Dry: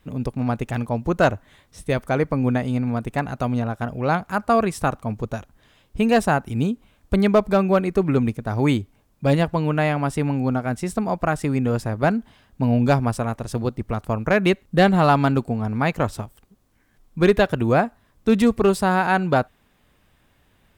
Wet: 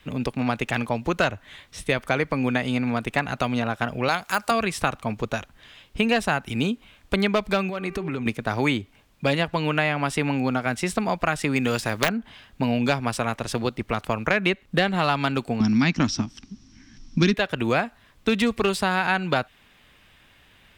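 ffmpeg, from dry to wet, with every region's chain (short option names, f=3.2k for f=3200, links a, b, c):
-filter_complex "[0:a]asettb=1/sr,asplit=3[a][b][c];[a]atrim=end=4.084[d];[b]atrim=start=4.08:end=4.51,asetpts=PTS-STARTPTS,afade=t=in:d=0.004:c=qsin,afade=t=out:st=0.426:d=0.004:c=qsin,deesser=0.6,bass=f=250:g=-11,treble=f=4k:g=12[e];[c]atrim=start=4.506[f];[d][e]acrossfade=d=0.004:c1=hsin:c2=qsin[g];[g][f]acrossfade=d=0.004:c1=qsin:c2=hsin,asettb=1/sr,asplit=3[h][i][j];[h]atrim=end=7.694[k];[i]atrim=start=7.69:end=8.26,asetpts=PTS-STARTPTS,afade=t=in:d=0.004:c=qsin,afade=t=out:st=0.566:d=0.004:c=qsin,bandreject=f=392:t=h:w=4,bandreject=f=784:t=h:w=4,bandreject=f=1.176k:t=h:w=4,bandreject=f=1.568k:t=h:w=4,bandreject=f=1.96k:t=h:w=4,bandreject=f=2.352k:t=h:w=4,bandreject=f=2.744k:t=h:w=4,acompressor=threshold=-25dB:ratio=16:attack=3.2:release=140:knee=1:detection=peak[l];[j]atrim=start=8.256[m];[k][l]acrossfade=d=0.004:c1=hsin:c2=qsin[n];[n][m]acrossfade=d=0.004:c1=qsin:c2=hsin,asettb=1/sr,asplit=3[o][p][q];[o]atrim=end=11.564[r];[p]atrim=start=11.56:end=12.09,asetpts=PTS-STARTPTS,afade=t=in:d=0.004:c=qsin,afade=t=out:st=0.526:d=0.004:c=qsin,deesser=0.9,highshelf=f=2.9k:g=11.5,aeval=exprs='(mod(2.82*val(0)+1,2)-1)/2.82':c=same[s];[q]atrim=start=12.086[t];[r][s]acrossfade=d=0.004:c1=hsin:c2=qsin[u];[u][t]acrossfade=d=0.004:c1=qsin:c2=hsin,asettb=1/sr,asplit=3[v][w][x];[v]atrim=end=15.604[y];[w]atrim=start=15.6:end=17.34,asetpts=PTS-STARTPTS,afade=t=in:d=0.004:c=qsin,afade=t=out:st=1.736:d=0.004:c=qsin,lowpass=f=5.6k:t=q:w=12,lowshelf=f=360:t=q:w=3:g=10.5[z];[x]atrim=start=17.336[aa];[y][z]acrossfade=d=0.004:c1=hsin:c2=qsin[ab];[ab][aa]acrossfade=d=0.004:c1=qsin:c2=hsin,equalizer=f=2.8k:w=0.6:g=11,acrossover=split=180|2200[ac][ad][ae];[ac]acompressor=threshold=-36dB:ratio=4[af];[ad]acompressor=threshold=-22dB:ratio=4[ag];[ae]acompressor=threshold=-30dB:ratio=4[ah];[af][ag][ah]amix=inputs=3:normalize=0,volume=1dB"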